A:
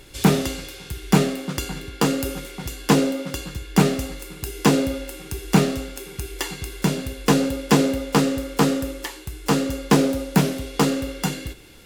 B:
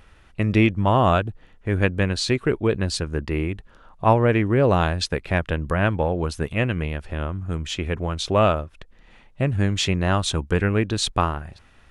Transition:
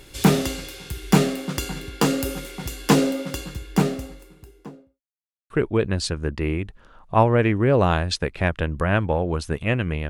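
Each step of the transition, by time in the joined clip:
A
0:03.14–0:05.02: fade out and dull
0:05.02–0:05.50: silence
0:05.50: continue with B from 0:02.40

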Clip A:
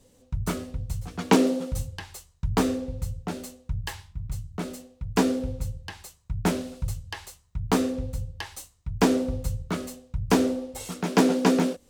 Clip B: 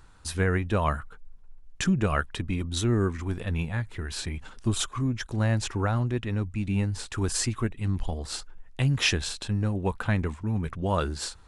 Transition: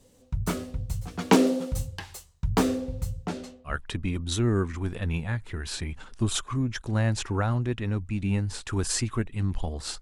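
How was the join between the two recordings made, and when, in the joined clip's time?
clip A
0:03.25–0:03.80: low-pass filter 11,000 Hz → 1,200 Hz
0:03.72: continue with clip B from 0:02.17, crossfade 0.16 s

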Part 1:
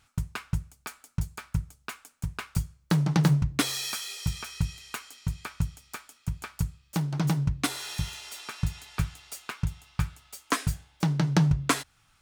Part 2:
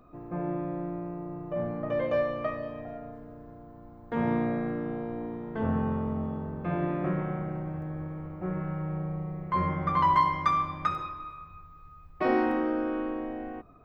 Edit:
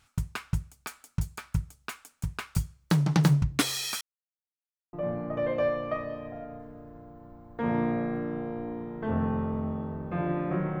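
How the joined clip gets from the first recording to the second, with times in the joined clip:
part 1
0:04.01–0:04.93: silence
0:04.93: continue with part 2 from 0:01.46

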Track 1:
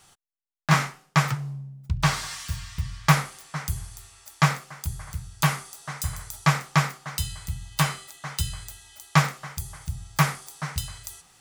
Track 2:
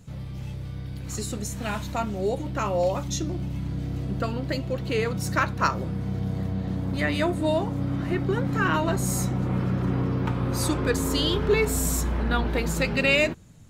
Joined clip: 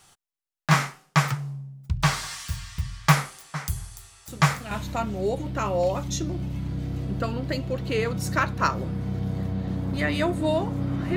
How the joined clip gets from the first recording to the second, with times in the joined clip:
track 1
0:04.28: mix in track 2 from 0:01.28 0.43 s −8 dB
0:04.71: continue with track 2 from 0:01.71

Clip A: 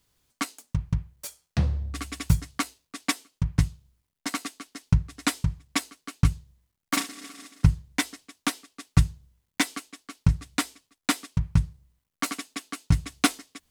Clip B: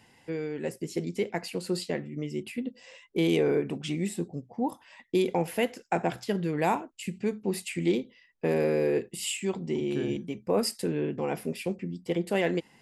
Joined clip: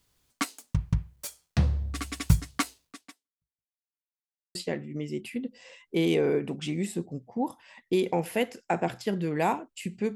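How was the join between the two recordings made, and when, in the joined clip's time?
clip A
0:02.89–0:03.75: fade out exponential
0:03.75–0:04.55: silence
0:04.55: continue with clip B from 0:01.77

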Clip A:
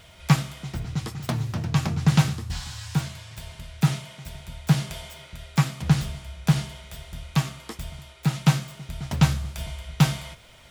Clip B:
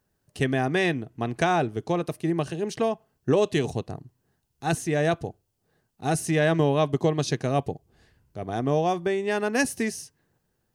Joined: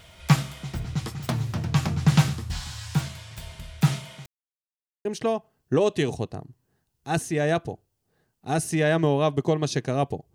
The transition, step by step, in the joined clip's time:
clip A
0:04.26–0:05.05: silence
0:05.05: continue with clip B from 0:02.61

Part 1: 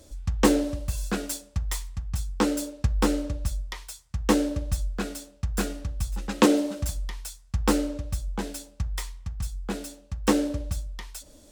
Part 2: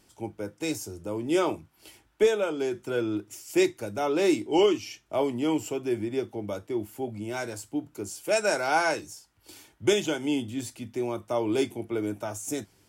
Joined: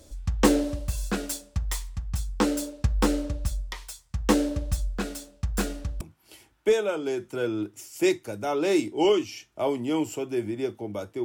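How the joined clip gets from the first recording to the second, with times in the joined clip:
part 1
0:06.01: continue with part 2 from 0:01.55

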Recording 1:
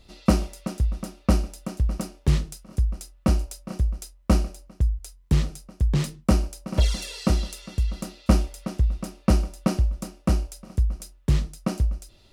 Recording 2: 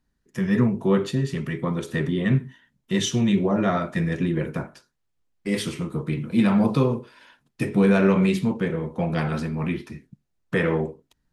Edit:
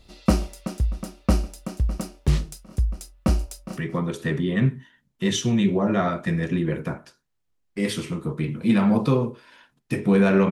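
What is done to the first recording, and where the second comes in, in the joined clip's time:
recording 1
0:03.47–0:03.77: delay throw 220 ms, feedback 15%, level −13 dB
0:03.77: continue with recording 2 from 0:01.46

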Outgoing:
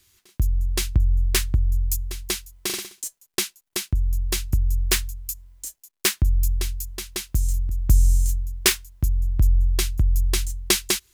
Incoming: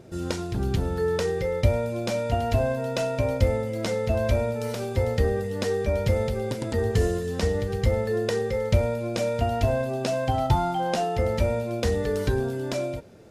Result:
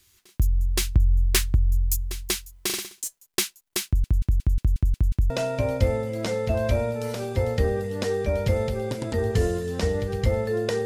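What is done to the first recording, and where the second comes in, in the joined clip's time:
outgoing
0:03.86: stutter in place 0.18 s, 8 plays
0:05.30: continue with incoming from 0:02.90

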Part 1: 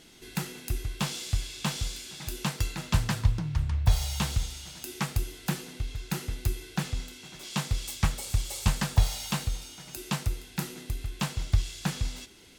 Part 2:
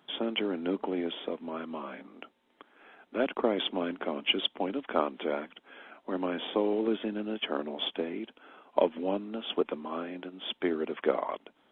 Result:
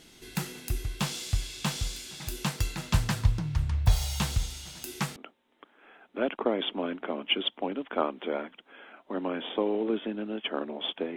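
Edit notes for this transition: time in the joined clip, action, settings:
part 1
0:05.16: continue with part 2 from 0:02.14

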